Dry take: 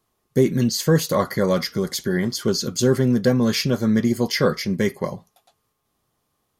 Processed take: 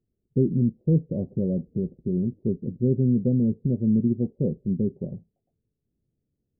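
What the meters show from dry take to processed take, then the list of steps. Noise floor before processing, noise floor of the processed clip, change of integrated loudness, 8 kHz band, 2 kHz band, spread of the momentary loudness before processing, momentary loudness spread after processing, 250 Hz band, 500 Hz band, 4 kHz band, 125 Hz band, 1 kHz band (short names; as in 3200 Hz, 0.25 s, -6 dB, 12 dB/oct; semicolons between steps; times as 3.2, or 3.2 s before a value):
-73 dBFS, -80 dBFS, -4.0 dB, under -40 dB, under -40 dB, 6 LU, 8 LU, -2.5 dB, -9.0 dB, under -40 dB, -1.0 dB, under -30 dB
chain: Gaussian blur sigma 23 samples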